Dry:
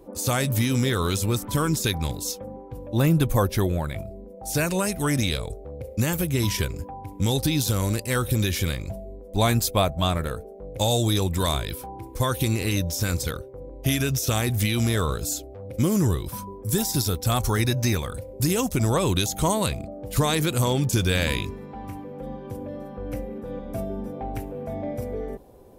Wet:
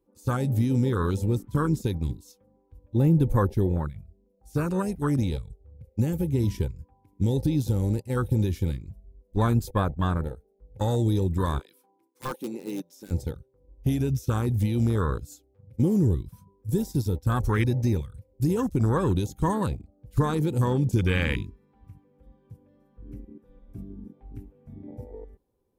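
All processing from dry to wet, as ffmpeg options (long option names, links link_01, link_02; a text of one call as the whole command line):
ffmpeg -i in.wav -filter_complex "[0:a]asettb=1/sr,asplit=3[link_01][link_02][link_03];[link_01]atrim=end=11.594[link_04];[link_02]atrim=start=11.59:end=13.11,asetpts=PTS-STARTPTS,afade=type=in:duration=0.004:curve=qsin,afade=type=out:start_time=1.516:duration=0.004:curve=qsin,highpass=frequency=230:width=0.5412,highpass=frequency=230:width=1.3066,agate=range=-33dB:threshold=-37dB:ratio=3:release=100:detection=peak,aeval=exprs='(mod(7.08*val(0)+1,2)-1)/7.08':channel_layout=same[link_05];[link_03]atrim=start=13.106[link_06];[link_04][link_05]acrossfade=duration=0.004:curve1=hsin:curve2=qsin[link_07];[link_07][link_06]acrossfade=duration=0.004:curve1=qsin:curve2=hsin,agate=range=-7dB:threshold=-27dB:ratio=16:detection=peak,afwtdn=0.0447,equalizer=frequency=660:width=3.7:gain=-12.5" out.wav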